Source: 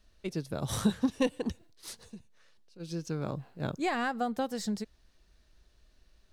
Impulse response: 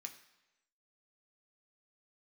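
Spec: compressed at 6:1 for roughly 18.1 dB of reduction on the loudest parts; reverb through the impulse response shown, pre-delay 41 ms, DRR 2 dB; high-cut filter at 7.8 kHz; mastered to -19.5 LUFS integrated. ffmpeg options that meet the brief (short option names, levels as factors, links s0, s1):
-filter_complex "[0:a]lowpass=7800,acompressor=threshold=0.00708:ratio=6,asplit=2[s0][s1];[1:a]atrim=start_sample=2205,adelay=41[s2];[s1][s2]afir=irnorm=-1:irlink=0,volume=1.41[s3];[s0][s3]amix=inputs=2:normalize=0,volume=21.1"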